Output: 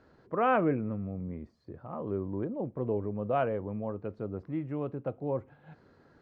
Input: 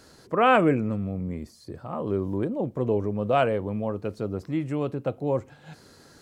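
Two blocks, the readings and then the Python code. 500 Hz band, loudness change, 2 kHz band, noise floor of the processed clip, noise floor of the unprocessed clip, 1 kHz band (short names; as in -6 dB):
-6.5 dB, -6.5 dB, -9.0 dB, -62 dBFS, -54 dBFS, -7.0 dB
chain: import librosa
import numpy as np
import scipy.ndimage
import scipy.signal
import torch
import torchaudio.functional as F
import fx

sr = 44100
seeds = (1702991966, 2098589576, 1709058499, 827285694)

y = scipy.signal.sosfilt(scipy.signal.butter(2, 1800.0, 'lowpass', fs=sr, output='sos'), x)
y = F.gain(torch.from_numpy(y), -6.5).numpy()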